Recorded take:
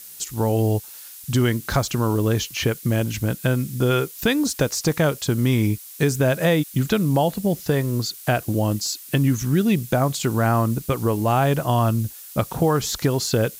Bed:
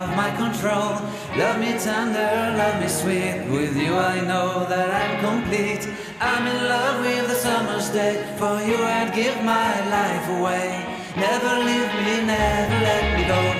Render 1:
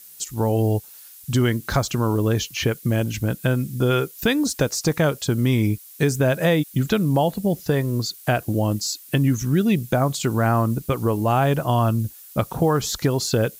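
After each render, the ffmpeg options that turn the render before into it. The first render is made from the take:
ffmpeg -i in.wav -af "afftdn=noise_reduction=6:noise_floor=-41" out.wav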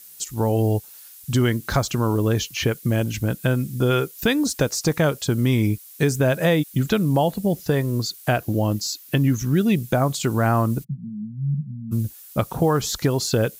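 ffmpeg -i in.wav -filter_complex "[0:a]asettb=1/sr,asplit=3[link_01][link_02][link_03];[link_01]atrim=end=8.364[link_04];[link_02]atrim=start=8.36:end=9.56,asetpts=PTS-STARTPTS,afade=type=in:duration=0.004:curve=qsin,afade=type=out:start_time=1.196:duration=0.004:curve=qsin,equalizer=frequency=8800:width_type=o:width=0.4:gain=-6[link_05];[link_03]atrim=start=9.556[link_06];[link_04][link_05]acrossfade=duration=0.004:curve1=hsin:curve2=qsin[link_07];[link_07][link_06]acrossfade=duration=0.004:curve1=qsin:curve2=hsin,asplit=3[link_08][link_09][link_10];[link_08]afade=type=out:start_time=10.83:duration=0.02[link_11];[link_09]asuperpass=centerf=170:order=8:qfactor=2,afade=type=in:start_time=10.83:duration=0.02,afade=type=out:start_time=11.91:duration=0.02[link_12];[link_10]afade=type=in:start_time=11.91:duration=0.02[link_13];[link_11][link_12][link_13]amix=inputs=3:normalize=0" out.wav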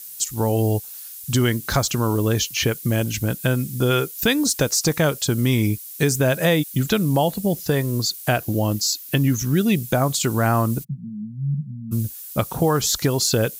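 ffmpeg -i in.wav -af "highshelf=frequency=3300:gain=7.5" out.wav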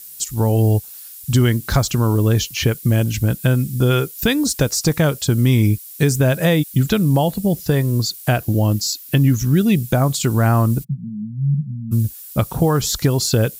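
ffmpeg -i in.wav -af "lowshelf=frequency=170:gain=9.5,bandreject=frequency=6300:width=23" out.wav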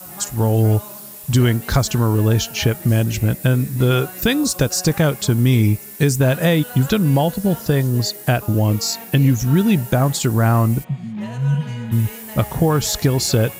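ffmpeg -i in.wav -i bed.wav -filter_complex "[1:a]volume=-16dB[link_01];[0:a][link_01]amix=inputs=2:normalize=0" out.wav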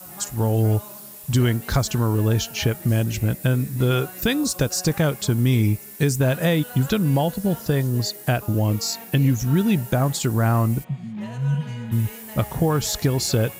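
ffmpeg -i in.wav -af "volume=-4dB" out.wav

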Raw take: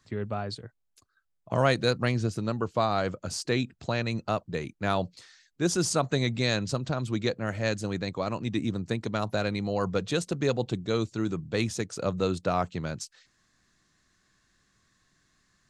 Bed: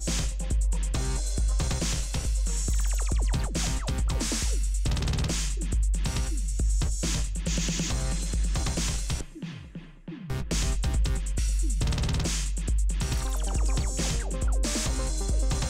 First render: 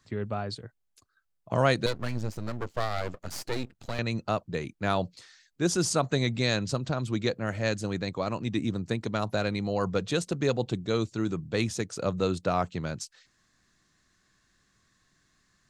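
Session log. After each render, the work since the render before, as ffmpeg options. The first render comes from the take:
ffmpeg -i in.wav -filter_complex "[0:a]asettb=1/sr,asplit=3[link_01][link_02][link_03];[link_01]atrim=end=1.864[link_04];[link_02]atrim=start=1.86:end=3.99,asetpts=PTS-STARTPTS,afade=type=in:duration=0.004:curve=qsin,afade=type=out:start_time=2.126:duration=0.004:curve=qsin,aeval=exprs='max(val(0),0)':channel_layout=same[link_05];[link_03]atrim=start=3.986[link_06];[link_04][link_05]acrossfade=duration=0.004:curve1=hsin:curve2=qsin[link_07];[link_07][link_06]acrossfade=duration=0.004:curve1=qsin:curve2=hsin" out.wav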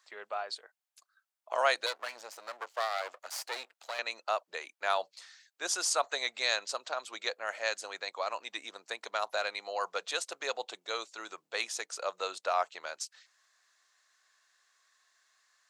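ffmpeg -i in.wav -af "highpass=frequency=640:width=0.5412,highpass=frequency=640:width=1.3066" out.wav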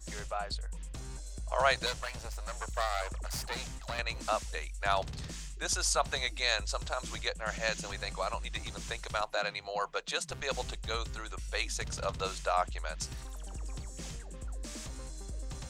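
ffmpeg -i in.wav -i bed.wav -filter_complex "[1:a]volume=-14.5dB[link_01];[0:a][link_01]amix=inputs=2:normalize=0" out.wav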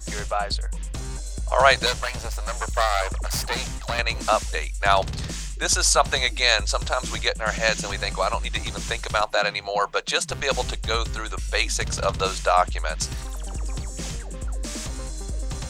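ffmpeg -i in.wav -af "volume=11dB" out.wav

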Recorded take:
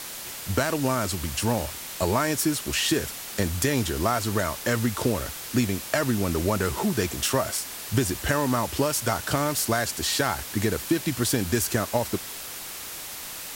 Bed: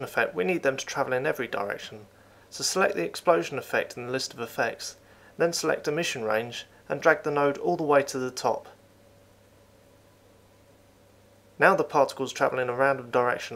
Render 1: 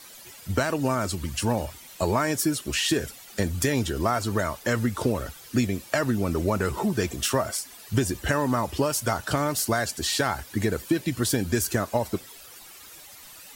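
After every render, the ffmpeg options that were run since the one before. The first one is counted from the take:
ffmpeg -i in.wav -af "afftdn=noise_reduction=13:noise_floor=-37" out.wav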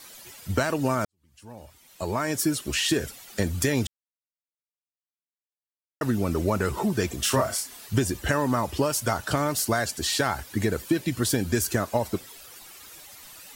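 ffmpeg -i in.wav -filter_complex "[0:a]asettb=1/sr,asplit=3[link_01][link_02][link_03];[link_01]atrim=end=7.234[link_04];[link_02]atrim=start=7.23:end=7.87,asetpts=PTS-STARTPTS,afade=type=in:duration=0.004:curve=qsin,afade=type=out:start_time=0.636:duration=0.004:curve=qsin,asplit=2[link_05][link_06];[link_06]adelay=31,volume=-4dB[link_07];[link_05][link_07]amix=inputs=2:normalize=0,atrim=end_sample=28224[link_08];[link_03]atrim=start=7.866[link_09];[link_04][link_08]acrossfade=duration=0.004:curve1=hsin:curve2=qsin[link_10];[link_10][link_09]acrossfade=duration=0.004:curve1=qsin:curve2=hsin,asplit=4[link_11][link_12][link_13][link_14];[link_11]atrim=end=1.05,asetpts=PTS-STARTPTS,afade=type=out:start_time=1.046:duration=0.004:curve=hsin[link_15];[link_12]atrim=start=1.05:end=3.87,asetpts=PTS-STARTPTS,afade=type=in:duration=1.39:curve=qua,afade=type=out:start_time=2.816:duration=0.004:curve=hsin[link_16];[link_13]atrim=start=3.87:end=6.01,asetpts=PTS-STARTPTS,volume=0[link_17];[link_14]atrim=start=6.01,asetpts=PTS-STARTPTS,afade=type=in:duration=0.004:curve=hsin[link_18];[link_15][link_16][link_17][link_18]concat=n=4:v=0:a=1" out.wav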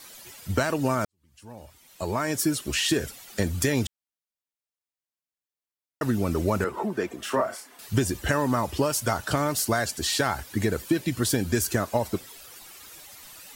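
ffmpeg -i in.wav -filter_complex "[0:a]asettb=1/sr,asplit=3[link_01][link_02][link_03];[link_01]atrim=end=6.644[link_04];[link_02]atrim=start=6.64:end=7.79,asetpts=PTS-STARTPTS,afade=type=in:duration=0.004:curve=qsin,afade=type=out:start_time=1.146:duration=0.004:curve=qsin,acrossover=split=210 2300:gain=0.1 1 0.224[link_05][link_06][link_07];[link_05][link_06][link_07]amix=inputs=3:normalize=0[link_08];[link_03]atrim=start=7.786[link_09];[link_04][link_08]acrossfade=duration=0.004:curve1=hsin:curve2=qsin[link_10];[link_10][link_09]acrossfade=duration=0.004:curve1=qsin:curve2=hsin" out.wav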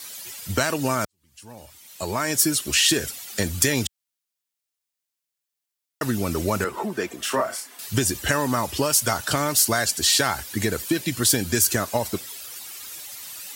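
ffmpeg -i in.wav -af "highpass=60,highshelf=frequency=2000:gain=9.5" out.wav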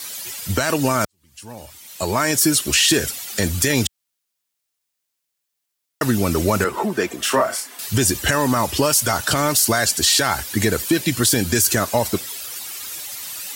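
ffmpeg -i in.wav -af "alimiter=limit=-12dB:level=0:latency=1:release=14,acontrast=56" out.wav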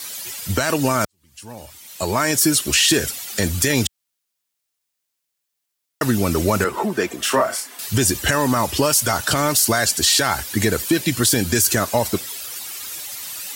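ffmpeg -i in.wav -af anull out.wav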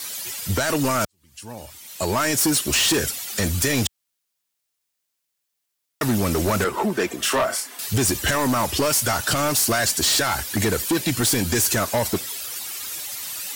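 ffmpeg -i in.wav -af "asoftclip=type=hard:threshold=-16.5dB" out.wav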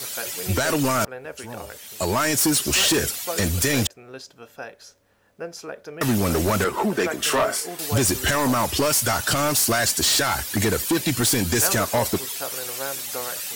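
ffmpeg -i in.wav -i bed.wav -filter_complex "[1:a]volume=-9.5dB[link_01];[0:a][link_01]amix=inputs=2:normalize=0" out.wav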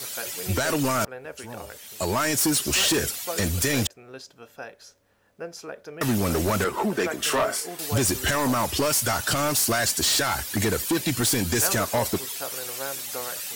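ffmpeg -i in.wav -af "volume=-2.5dB" out.wav

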